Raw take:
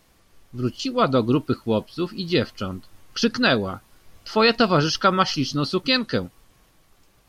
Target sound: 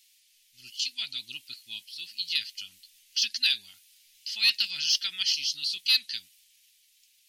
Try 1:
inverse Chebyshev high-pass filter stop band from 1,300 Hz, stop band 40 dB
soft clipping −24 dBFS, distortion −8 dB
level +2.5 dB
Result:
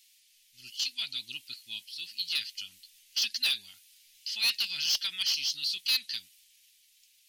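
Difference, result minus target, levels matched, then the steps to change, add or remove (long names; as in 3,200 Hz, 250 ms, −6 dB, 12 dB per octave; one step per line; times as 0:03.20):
soft clipping: distortion +10 dB
change: soft clipping −14 dBFS, distortion −18 dB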